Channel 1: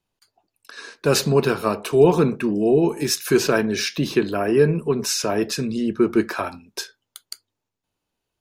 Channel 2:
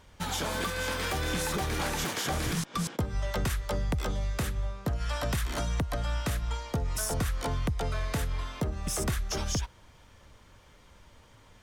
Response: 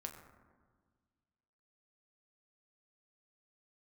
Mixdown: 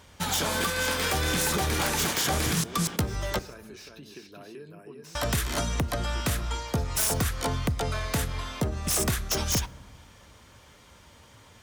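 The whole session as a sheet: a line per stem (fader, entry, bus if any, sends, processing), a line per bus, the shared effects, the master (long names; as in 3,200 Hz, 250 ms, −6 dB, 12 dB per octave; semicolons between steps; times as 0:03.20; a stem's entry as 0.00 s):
−18.0 dB, 0.00 s, no send, echo send −4.5 dB, high-shelf EQ 3,100 Hz +7.5 dB; downward compressor 4 to 1, threshold −26 dBFS, peak gain reduction 14.5 dB; slew-rate limiting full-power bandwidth 200 Hz
+1.5 dB, 0.00 s, muted 0:03.39–0:05.15, send −7.5 dB, no echo send, high-shelf EQ 3,400 Hz +5 dB; wrap-around overflow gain 20.5 dB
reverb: on, RT60 1.6 s, pre-delay 6 ms
echo: single-tap delay 383 ms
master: high-pass filter 61 Hz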